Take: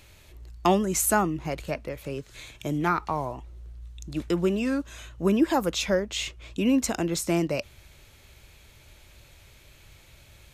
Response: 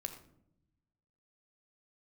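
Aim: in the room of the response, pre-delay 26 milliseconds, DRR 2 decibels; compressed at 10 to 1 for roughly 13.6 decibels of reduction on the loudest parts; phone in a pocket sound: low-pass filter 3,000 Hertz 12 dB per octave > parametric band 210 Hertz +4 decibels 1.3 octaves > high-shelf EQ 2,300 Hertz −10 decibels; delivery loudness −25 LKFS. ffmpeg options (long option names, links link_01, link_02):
-filter_complex "[0:a]acompressor=threshold=-30dB:ratio=10,asplit=2[link_01][link_02];[1:a]atrim=start_sample=2205,adelay=26[link_03];[link_02][link_03]afir=irnorm=-1:irlink=0,volume=-0.5dB[link_04];[link_01][link_04]amix=inputs=2:normalize=0,lowpass=3000,equalizer=frequency=210:width_type=o:width=1.3:gain=4,highshelf=frequency=2300:gain=-10,volume=8dB"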